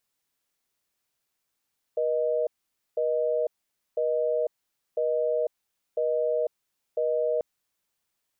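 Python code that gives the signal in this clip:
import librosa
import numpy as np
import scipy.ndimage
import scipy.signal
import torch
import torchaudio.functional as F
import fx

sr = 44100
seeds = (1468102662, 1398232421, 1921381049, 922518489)

y = fx.call_progress(sr, length_s=5.44, kind='busy tone', level_db=-25.5)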